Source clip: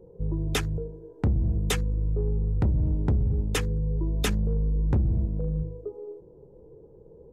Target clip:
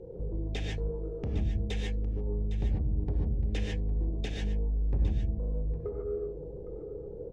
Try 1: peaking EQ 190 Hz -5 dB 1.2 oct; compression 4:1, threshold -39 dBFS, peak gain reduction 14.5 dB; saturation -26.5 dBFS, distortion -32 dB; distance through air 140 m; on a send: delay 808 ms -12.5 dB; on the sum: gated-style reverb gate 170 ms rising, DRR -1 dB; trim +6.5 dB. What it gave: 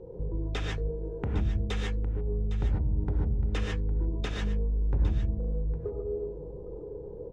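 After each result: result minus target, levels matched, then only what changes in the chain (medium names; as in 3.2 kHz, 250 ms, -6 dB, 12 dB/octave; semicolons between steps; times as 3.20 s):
saturation: distortion -13 dB; 1 kHz band +5.0 dB
change: saturation -35 dBFS, distortion -19 dB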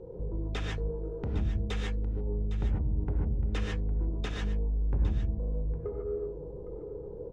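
1 kHz band +4.5 dB
add first: Butterworth band-stop 1.2 kHz, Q 1.3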